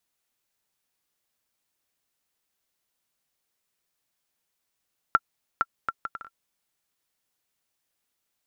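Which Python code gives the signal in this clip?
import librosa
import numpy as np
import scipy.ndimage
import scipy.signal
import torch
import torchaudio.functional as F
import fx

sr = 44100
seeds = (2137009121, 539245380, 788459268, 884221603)

y = fx.bouncing_ball(sr, first_gap_s=0.46, ratio=0.6, hz=1360.0, decay_ms=42.0, level_db=-6.0)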